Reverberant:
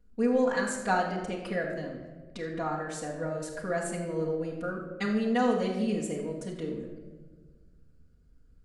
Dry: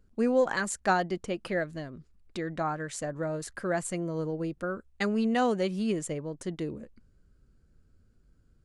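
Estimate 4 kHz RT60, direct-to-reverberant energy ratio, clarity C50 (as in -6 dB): n/a, -5.5 dB, 4.0 dB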